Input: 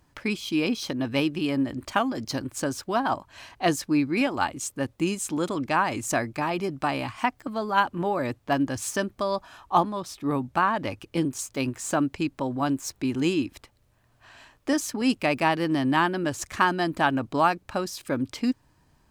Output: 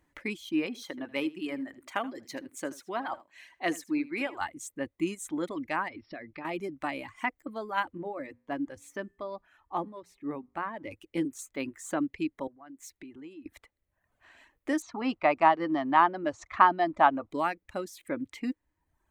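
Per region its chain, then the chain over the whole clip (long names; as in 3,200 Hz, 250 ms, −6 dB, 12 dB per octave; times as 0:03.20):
0:00.66–0:04.41: high-pass filter 290 Hz 6 dB per octave + single-tap delay 78 ms −9 dB
0:05.88–0:06.45: linear-phase brick-wall low-pass 5,600 Hz + downward compressor 3 to 1, threshold −33 dBFS
0:07.97–0:10.91: high-shelf EQ 2,600 Hz −9 dB + mains-hum notches 60/120/180/240 Hz + tuned comb filter 57 Hz, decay 0.84 s, harmonics odd, mix 30%
0:12.47–0:13.46: downward compressor 20 to 1, threshold −35 dBFS + multiband upward and downward expander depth 70%
0:14.82–0:17.31: low-pass filter 5,900 Hz 24 dB per octave + flat-topped bell 910 Hz +11.5 dB 1.3 octaves
whole clip: notch filter 490 Hz, Q 12; reverb reduction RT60 1 s; thirty-one-band graphic EQ 125 Hz −11 dB, 315 Hz +6 dB, 500 Hz +7 dB, 2,000 Hz +10 dB, 5,000 Hz −8 dB; level −8.5 dB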